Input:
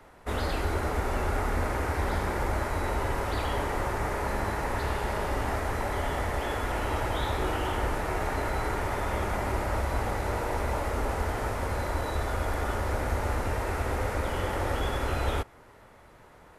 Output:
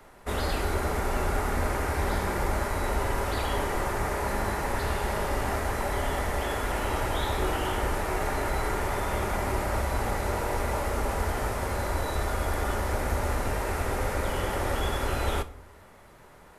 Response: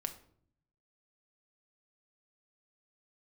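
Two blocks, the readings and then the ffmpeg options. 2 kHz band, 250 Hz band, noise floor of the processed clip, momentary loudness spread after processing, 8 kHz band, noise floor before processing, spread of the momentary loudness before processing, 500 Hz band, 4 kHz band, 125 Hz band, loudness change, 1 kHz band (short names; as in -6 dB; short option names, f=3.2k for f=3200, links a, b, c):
+1.0 dB, +1.0 dB, -52 dBFS, 1 LU, +5.0 dB, -54 dBFS, 1 LU, +1.0 dB, +2.5 dB, 0.0 dB, +1.0 dB, +1.0 dB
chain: -filter_complex "[0:a]asplit=2[a][b];[1:a]atrim=start_sample=2205,highshelf=f=5k:g=9.5[c];[b][c]afir=irnorm=-1:irlink=0,volume=1.5dB[d];[a][d]amix=inputs=2:normalize=0,volume=-5.5dB"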